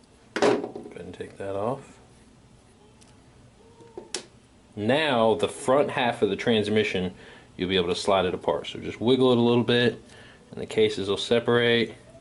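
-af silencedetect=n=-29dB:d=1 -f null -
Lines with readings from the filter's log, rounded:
silence_start: 1.75
silence_end: 3.98 | silence_duration: 2.23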